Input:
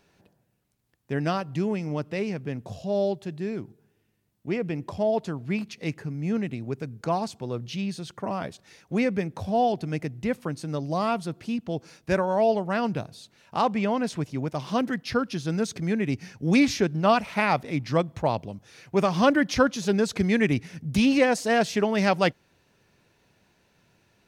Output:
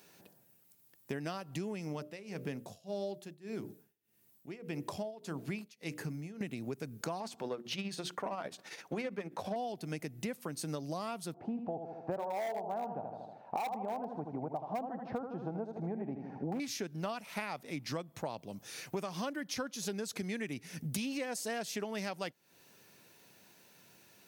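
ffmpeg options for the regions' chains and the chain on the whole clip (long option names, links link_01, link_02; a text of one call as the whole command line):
ffmpeg -i in.wav -filter_complex "[0:a]asettb=1/sr,asplit=3[link_01][link_02][link_03];[link_01]atrim=end=1.934[link_04];[link_02]atrim=start=1.93:end=6.41,asetpts=PTS-STARTPTS,afade=type=in:duration=0.004:curve=qsin,afade=type=out:start_time=4.476:duration=0.004:curve=qsin,bandreject=frequency=60:width_type=h:width=6,bandreject=frequency=120:width_type=h:width=6,bandreject=frequency=180:width_type=h:width=6,bandreject=frequency=240:width_type=h:width=6,bandreject=frequency=300:width_type=h:width=6,bandreject=frequency=360:width_type=h:width=6,bandreject=frequency=420:width_type=h:width=6,bandreject=frequency=480:width_type=h:width=6,bandreject=frequency=540:width_type=h:width=6,bandreject=frequency=600:width_type=h:width=6,tremolo=f=1.7:d=0.94[link_05];[link_03]atrim=start=6.406[link_06];[link_04][link_05]acrossfade=duration=0.004:curve1=hsin:curve2=qsin[link_07];[link_07][link_06]acrossfade=duration=0.004:curve1=qsin:curve2=hsin,asettb=1/sr,asplit=3[link_08][link_09][link_10];[link_08]atrim=end=7.204[link_11];[link_09]atrim=start=7.2:end=9.56,asetpts=PTS-STARTPTS,afade=type=in:duration=0.004:curve=qsin,afade=type=out:start_time=2.356:duration=0.004:curve=qsin,bandreject=frequency=60:width_type=h:width=6,bandreject=frequency=120:width_type=h:width=6,bandreject=frequency=180:width_type=h:width=6,bandreject=frequency=240:width_type=h:width=6,bandreject=frequency=300:width_type=h:width=6,bandreject=frequency=360:width_type=h:width=6,tremolo=f=15:d=0.56,asplit=2[link_12][link_13];[link_13]highpass=frequency=720:poles=1,volume=16dB,asoftclip=type=tanh:threshold=-14dB[link_14];[link_12][link_14]amix=inputs=2:normalize=0,lowpass=frequency=1300:poles=1,volume=-6dB[link_15];[link_10]atrim=start=9.556[link_16];[link_11][link_15]acrossfade=duration=0.004:curve1=hsin:curve2=qsin[link_17];[link_17][link_16]acrossfade=duration=0.004:curve1=qsin:curve2=hsin,asettb=1/sr,asplit=3[link_18][link_19][link_20];[link_18]atrim=end=11.344[link_21];[link_19]atrim=start=11.34:end=16.6,asetpts=PTS-STARTPTS,afade=type=in:duration=0.004:curve=qsin,afade=type=out:start_time=5.256:duration=0.004:curve=qsin,lowpass=frequency=790:width_type=q:width=6.2,aecho=1:1:78|156|234|312|390:0.398|0.187|0.0879|0.0413|0.0194,atrim=end_sample=231966,asoftclip=type=hard:threshold=-12dB[link_22];[link_20]atrim=start=16.596[link_23];[link_21][link_22]acrossfade=duration=0.004:curve1=hsin:curve2=qsin[link_24];[link_24][link_23]acrossfade=duration=0.004:curve1=qsin:curve2=hsin,highpass=160,aemphasis=mode=production:type=50fm,acompressor=threshold=-36dB:ratio=12,volume=1dB" out.wav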